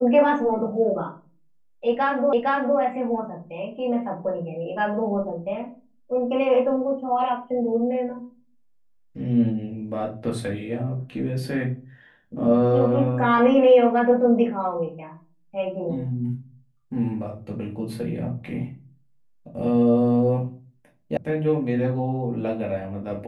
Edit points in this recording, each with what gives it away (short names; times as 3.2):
2.33 repeat of the last 0.46 s
21.17 sound cut off